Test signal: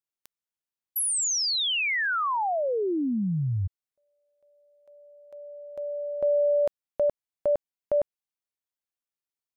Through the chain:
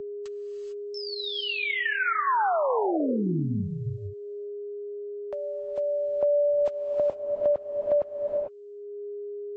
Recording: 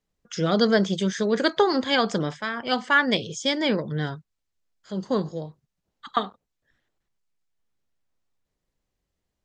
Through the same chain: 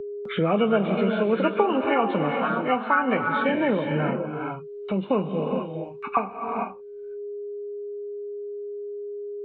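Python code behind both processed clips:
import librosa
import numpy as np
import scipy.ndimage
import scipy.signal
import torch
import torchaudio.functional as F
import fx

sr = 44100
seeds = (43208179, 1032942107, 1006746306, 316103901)

y = fx.freq_compress(x, sr, knee_hz=1100.0, ratio=1.5)
y = fx.lowpass(y, sr, hz=1500.0, slope=6)
y = fx.low_shelf(y, sr, hz=66.0, db=-8.5)
y = fx.gate_hold(y, sr, open_db=-48.0, close_db=-55.0, hold_ms=353.0, range_db=-34, attack_ms=0.51, release_ms=93.0)
y = fx.dynamic_eq(y, sr, hz=990.0, q=0.93, threshold_db=-38.0, ratio=4.0, max_db=5)
y = fx.rev_gated(y, sr, seeds[0], gate_ms=470, shape='rising', drr_db=6.0)
y = y + 10.0 ** (-49.0 / 20.0) * np.sin(2.0 * np.pi * 410.0 * np.arange(len(y)) / sr)
y = fx.band_squash(y, sr, depth_pct=70)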